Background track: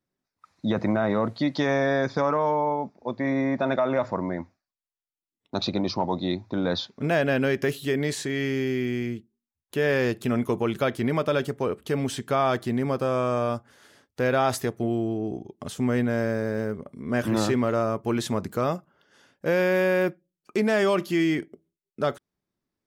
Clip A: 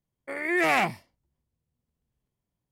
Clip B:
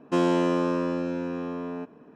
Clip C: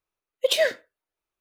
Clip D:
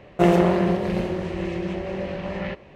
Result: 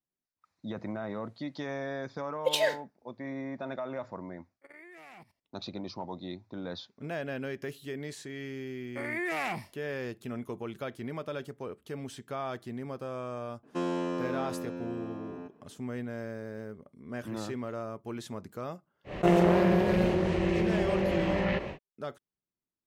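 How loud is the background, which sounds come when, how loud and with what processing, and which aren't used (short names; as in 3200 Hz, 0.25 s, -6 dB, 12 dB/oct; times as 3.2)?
background track -13 dB
2.02 add C -6 dB
4.34 add A -17 dB + level quantiser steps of 17 dB
8.68 add A -3 dB + compressor, threshold -26 dBFS
13.63 add B -9 dB
19.04 add D -6.5 dB, fades 0.10 s + fast leveller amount 50%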